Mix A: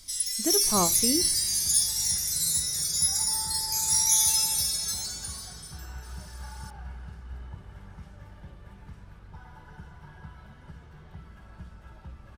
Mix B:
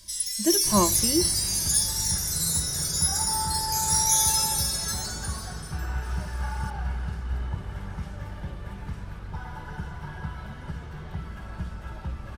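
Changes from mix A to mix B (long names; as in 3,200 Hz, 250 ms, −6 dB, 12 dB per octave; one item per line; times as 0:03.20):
speech: add EQ curve with evenly spaced ripples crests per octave 1.3, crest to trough 16 dB
second sound +10.5 dB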